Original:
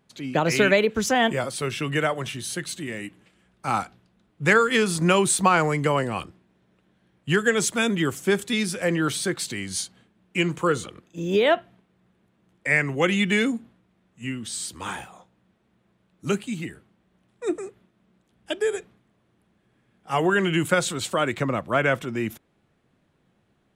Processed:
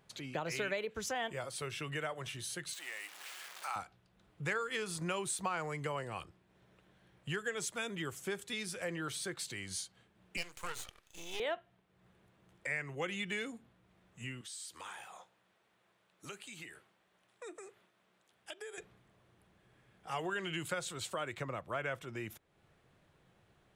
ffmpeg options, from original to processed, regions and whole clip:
ffmpeg -i in.wav -filter_complex "[0:a]asettb=1/sr,asplit=3[link_01][link_02][link_03];[link_01]atrim=end=2.734[link_04];[link_02]atrim=start=2.73:end=3.76,asetpts=PTS-STARTPTS,afade=type=in:duration=0.004:curve=qsin,afade=type=out:start_time=1.026:duration=0.004:curve=qsin,aeval=exprs='val(0)+0.5*0.0168*sgn(val(0))':channel_layout=same,highpass=920[link_05];[link_03]atrim=start=3.756[link_06];[link_04][link_05]acrossfade=duration=0.004:curve1=hsin:curve2=qsin[link_07];[link_07][link_06]acrossfade=duration=0.004:curve1=qsin:curve2=hsin,asettb=1/sr,asplit=3[link_08][link_09][link_10];[link_08]atrim=end=10.374[link_11];[link_09]atrim=start=10.37:end=11.4,asetpts=PTS-STARTPTS,afade=type=in:duration=0.004:curve=qsin,afade=type=out:start_time=1.026:duration=0.004:curve=qsin,highpass=180,tiltshelf=frequency=1200:gain=-9,aeval=exprs='max(val(0),0)':channel_layout=same[link_12];[link_10]atrim=start=11.396[link_13];[link_11][link_12]acrossfade=duration=0.004:curve1=hsin:curve2=qsin[link_14];[link_14][link_13]acrossfade=duration=0.004:curve1=qsin:curve2=hsin,asettb=1/sr,asplit=3[link_15][link_16][link_17];[link_15]atrim=end=14.414[link_18];[link_16]atrim=start=14.41:end=18.78,asetpts=PTS-STARTPTS,afade=type=in:duration=0.004:curve=qsin,afade=type=out:start_time=4.366:duration=0.004:curve=qsin,highpass=frequency=680:poles=1,acompressor=threshold=-44dB:ratio=2:attack=3.2:release=140:knee=1:detection=peak[link_19];[link_17]atrim=start=18.776[link_20];[link_18][link_19]acrossfade=duration=0.004:curve1=hsin:curve2=qsin[link_21];[link_21][link_20]acrossfade=duration=0.004:curve1=qsin:curve2=hsin,asettb=1/sr,asplit=3[link_22][link_23][link_24];[link_22]atrim=end=20.124[link_25];[link_23]atrim=start=20.12:end=20.73,asetpts=PTS-STARTPTS,afade=type=in:duration=0.004:curve=qsin,afade=type=out:start_time=0.606:duration=0.004:curve=qsin,equalizer=frequency=4500:width_type=o:width=1.1:gain=7,bandreject=frequency=5700:width=20[link_26];[link_24]atrim=start=20.726[link_27];[link_25][link_26]acrossfade=duration=0.004:curve1=hsin:curve2=qsin[link_28];[link_28][link_27]acrossfade=duration=0.004:curve1=qsin:curve2=hsin,equalizer=frequency=240:width_type=o:width=0.88:gain=-9.5,acompressor=threshold=-50dB:ratio=2,volume=1dB" out.wav

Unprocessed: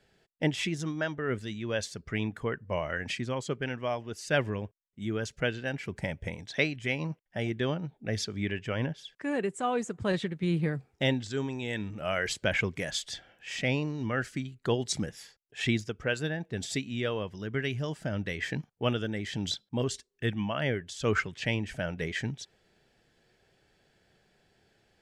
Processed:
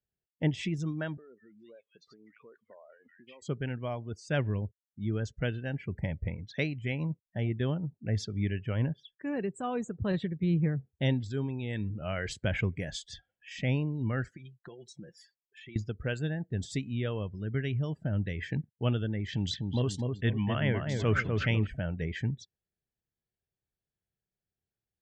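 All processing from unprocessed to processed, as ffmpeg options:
ffmpeg -i in.wav -filter_complex "[0:a]asettb=1/sr,asplit=3[link_01][link_02][link_03];[link_01]atrim=end=1.174[link_04];[link_02]atrim=start=1.17:end=3.42,asetpts=PTS-STARTPTS,afade=type=in:duration=0.004:curve=qsin,afade=type=out:start_time=2.246:duration=0.004:curve=qsin,acompressor=threshold=-41dB:ratio=10:attack=3.2:release=140:knee=1:detection=peak,highpass=380,lowpass=5100,acrossover=split=1600[link_05][link_06];[link_06]adelay=190[link_07];[link_05][link_07]amix=inputs=2:normalize=0,atrim=end_sample=99225[link_08];[link_03]atrim=start=3.416[link_09];[link_04][link_08]acrossfade=duration=0.004:curve1=hsin:curve2=qsin[link_10];[link_10][link_09]acrossfade=duration=0.004:curve1=qsin:curve2=hsin,asettb=1/sr,asplit=3[link_11][link_12][link_13];[link_11]atrim=end=14.314[link_14];[link_12]atrim=start=14.31:end=15.76,asetpts=PTS-STARTPTS,afade=type=in:duration=0.004:curve=qsin,afade=type=out:start_time=1.446:duration=0.004:curve=qsin,bass=frequency=250:gain=-13,treble=frequency=4000:gain=0,aecho=1:1:5.7:0.6,atrim=end_sample=63945,acompressor=threshold=-40dB:ratio=12:attack=3.2:release=140:knee=1:detection=peak[link_15];[link_13]atrim=start=15.756[link_16];[link_14][link_15]acrossfade=duration=0.004:curve1=hsin:curve2=qsin[link_17];[link_17][link_16]acrossfade=duration=0.004:curve1=qsin:curve2=hsin,asettb=1/sr,asplit=3[link_18][link_19][link_20];[link_18]atrim=end=19.284[link_21];[link_19]atrim=start=19.28:end=21.67,asetpts=PTS-STARTPTS,afade=type=in:duration=0.004:curve=qsin,afade=type=out:start_time=2.386:duration=0.004:curve=qsin,equalizer=frequency=2100:width=0.42:gain=5,asplit=2[link_22][link_23];[link_23]adelay=250,lowpass=frequency=1300:poles=1,volume=-3.5dB,asplit=2[link_24][link_25];[link_25]adelay=250,lowpass=frequency=1300:poles=1,volume=0.47,asplit=2[link_26][link_27];[link_27]adelay=250,lowpass=frequency=1300:poles=1,volume=0.47,asplit=2[link_28][link_29];[link_29]adelay=250,lowpass=frequency=1300:poles=1,volume=0.47,asplit=2[link_30][link_31];[link_31]adelay=250,lowpass=frequency=1300:poles=1,volume=0.47,asplit=2[link_32][link_33];[link_33]adelay=250,lowpass=frequency=1300:poles=1,volume=0.47[link_34];[link_22][link_24][link_26][link_28][link_30][link_32][link_34]amix=inputs=7:normalize=0,atrim=end_sample=105399[link_35];[link_20]atrim=start=21.666[link_36];[link_21][link_35]acrossfade=duration=0.004:curve1=hsin:curve2=qsin[link_37];[link_37][link_36]acrossfade=duration=0.004:curve1=qsin:curve2=hsin,afftdn=noise_reduction=26:noise_floor=-46,equalizer=frequency=60:width=0.32:gain=14,volume=-6.5dB" out.wav

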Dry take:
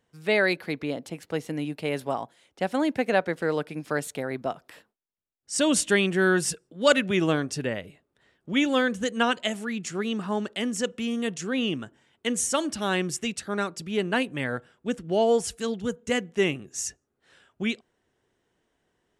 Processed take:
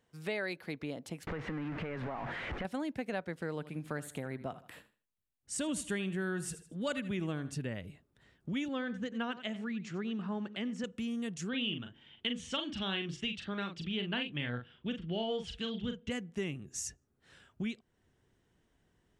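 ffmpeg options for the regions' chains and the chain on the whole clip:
ffmpeg -i in.wav -filter_complex "[0:a]asettb=1/sr,asplit=3[link_01][link_02][link_03];[link_01]atrim=end=1.274[link_04];[link_02]atrim=start=1.27:end=2.65,asetpts=PTS-STARTPTS,afade=type=in:duration=0.004:curve=qsin,afade=type=out:start_time=1.376:duration=0.004:curve=qsin,aeval=exprs='val(0)+0.5*0.0422*sgn(val(0))':channel_layout=same,lowpass=frequency=1800:width_type=q:width=1.8,acompressor=threshold=-29dB:ratio=2.5:attack=3.2:release=140:knee=1:detection=peak[link_05];[link_03]atrim=start=2.646[link_06];[link_04][link_05]acrossfade=duration=0.004:curve1=hsin:curve2=qsin[link_07];[link_07][link_06]acrossfade=duration=0.004:curve1=qsin:curve2=hsin,asettb=1/sr,asplit=3[link_08][link_09][link_10];[link_08]atrim=end=3.514[link_11];[link_09]atrim=start=3.51:end=7.55,asetpts=PTS-STARTPTS,afade=type=in:duration=0.004:curve=qsin,afade=type=out:start_time=4.036:duration=0.004:curve=qsin,equalizer=frequency=5300:width=2.9:gain=-8.5,aecho=1:1:78|156|234:0.158|0.0412|0.0107,atrim=end_sample=178164[link_12];[link_10]atrim=start=7.546[link_13];[link_11][link_12]acrossfade=duration=0.004:curve1=hsin:curve2=qsin[link_14];[link_14][link_13]acrossfade=duration=0.004:curve1=qsin:curve2=hsin,asettb=1/sr,asplit=3[link_15][link_16][link_17];[link_15]atrim=end=8.684[link_18];[link_16]atrim=start=8.68:end=10.84,asetpts=PTS-STARTPTS,afade=type=in:duration=0.004:curve=qsin,afade=type=out:start_time=2.156:duration=0.004:curve=qsin,highpass=140,lowpass=3500,aecho=1:1:92:0.168,atrim=end_sample=95256[link_19];[link_17]atrim=start=10.836[link_20];[link_18][link_19]acrossfade=duration=0.004:curve1=hsin:curve2=qsin[link_21];[link_21][link_20]acrossfade=duration=0.004:curve1=qsin:curve2=hsin,asettb=1/sr,asplit=3[link_22][link_23][link_24];[link_22]atrim=end=11.494[link_25];[link_23]atrim=start=11.49:end=16.11,asetpts=PTS-STARTPTS,afade=type=in:duration=0.004:curve=qsin,afade=type=out:start_time=4.616:duration=0.004:curve=qsin,lowpass=frequency=3200:width_type=q:width=4.9,asplit=2[link_26][link_27];[link_27]adelay=41,volume=-6.5dB[link_28];[link_26][link_28]amix=inputs=2:normalize=0,atrim=end_sample=203742[link_29];[link_24]atrim=start=16.106[link_30];[link_25][link_29]acrossfade=duration=0.004:curve1=hsin:curve2=qsin[link_31];[link_31][link_30]acrossfade=duration=0.004:curve1=qsin:curve2=hsin,asubboost=boost=2.5:cutoff=250,acompressor=threshold=-37dB:ratio=2.5,volume=-2dB" out.wav

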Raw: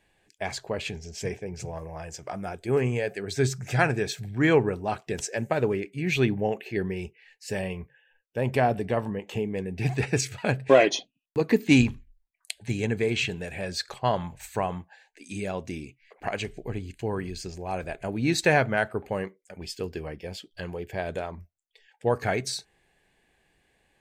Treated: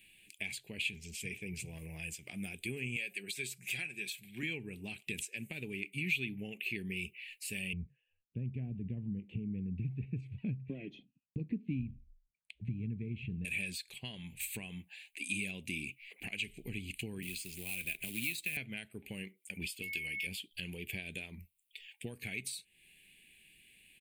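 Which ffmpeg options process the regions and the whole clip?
ffmpeg -i in.wav -filter_complex "[0:a]asettb=1/sr,asplit=3[link_01][link_02][link_03];[link_01]atrim=end=2.964[link_04];[link_02]atrim=start=2.96:end=4.43,asetpts=PTS-STARTPTS,afade=type=in:duration=0.004:curve=qsin,afade=type=out:start_time=1.466:duration=0.004:curve=qsin,highpass=frequency=460:poles=1,aecho=1:1:5.5:0.44,atrim=end_sample=64827[link_05];[link_03]atrim=start=4.426[link_06];[link_04][link_05]acrossfade=duration=0.004:curve1=hsin:curve2=qsin[link_07];[link_07][link_06]acrossfade=duration=0.004:curve1=qsin:curve2=hsin,asettb=1/sr,asplit=3[link_08][link_09][link_10];[link_08]atrim=end=7.734[link_11];[link_09]atrim=start=7.73:end=13.45,asetpts=PTS-STARTPTS,afade=type=in:duration=0.004:curve=qsin,afade=type=out:start_time=5.716:duration=0.004:curve=qsin,bandpass=frequency=120:width_type=q:width=0.55,aemphasis=mode=reproduction:type=bsi[link_12];[link_10]atrim=start=13.446[link_13];[link_11][link_12]acrossfade=duration=0.004:curve1=hsin:curve2=qsin[link_14];[link_14][link_13]acrossfade=duration=0.004:curve1=qsin:curve2=hsin,asettb=1/sr,asplit=3[link_15][link_16][link_17];[link_15]atrim=end=17.224[link_18];[link_16]atrim=start=17.22:end=18.57,asetpts=PTS-STARTPTS,afade=type=in:duration=0.004:curve=qsin,afade=type=out:start_time=1.346:duration=0.004:curve=qsin,acrusher=bits=4:mode=log:mix=0:aa=0.000001,acrossover=split=150|1800[link_19][link_20][link_21];[link_19]acompressor=threshold=-46dB:ratio=4[link_22];[link_20]acompressor=threshold=-36dB:ratio=4[link_23];[link_21]acompressor=threshold=-34dB:ratio=4[link_24];[link_22][link_23][link_24]amix=inputs=3:normalize=0[link_25];[link_17]atrim=start=18.566[link_26];[link_18][link_25]acrossfade=duration=0.004:curve1=hsin:curve2=qsin[link_27];[link_27][link_26]acrossfade=duration=0.004:curve1=qsin:curve2=hsin,asettb=1/sr,asplit=3[link_28][link_29][link_30];[link_28]atrim=end=19.824[link_31];[link_29]atrim=start=19.82:end=20.27,asetpts=PTS-STARTPTS,afade=type=in:duration=0.004:curve=qsin,afade=type=out:start_time=0.446:duration=0.004:curve=qsin,tiltshelf=frequency=1400:gain=-7,aeval=exprs='val(0)+0.00891*sin(2*PI*2200*n/s)':channel_layout=same[link_32];[link_30]atrim=start=20.266[link_33];[link_31][link_32]acrossfade=duration=0.004:curve1=hsin:curve2=qsin[link_34];[link_34][link_33]acrossfade=duration=0.004:curve1=qsin:curve2=hsin,tiltshelf=frequency=1500:gain=-7,acompressor=threshold=-41dB:ratio=5,firequalizer=gain_entry='entry(100,0);entry(200,6);entry(590,-14);entry(1300,-22);entry(2400,9);entry(5600,-13);entry(9300,6)':delay=0.05:min_phase=1,volume=2dB" out.wav

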